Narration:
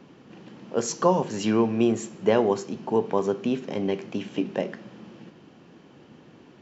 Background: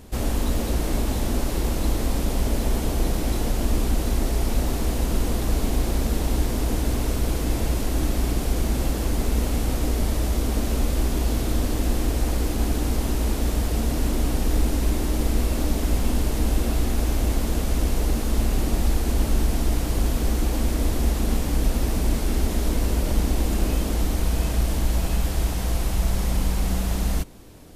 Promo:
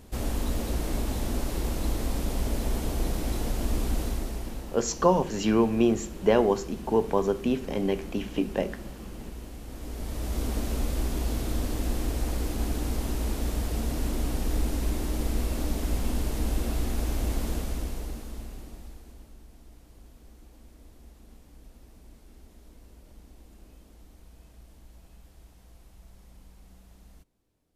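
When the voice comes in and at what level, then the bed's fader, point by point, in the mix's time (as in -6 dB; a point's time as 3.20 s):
4.00 s, -0.5 dB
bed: 4.02 s -5.5 dB
4.78 s -18.5 dB
9.64 s -18.5 dB
10.41 s -6 dB
17.51 s -6 dB
19.37 s -29.5 dB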